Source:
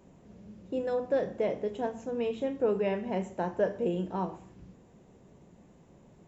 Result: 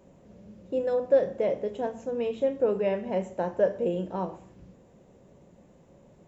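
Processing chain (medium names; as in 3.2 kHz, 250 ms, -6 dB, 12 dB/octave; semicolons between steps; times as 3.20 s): peaking EQ 550 Hz +8 dB 0.3 oct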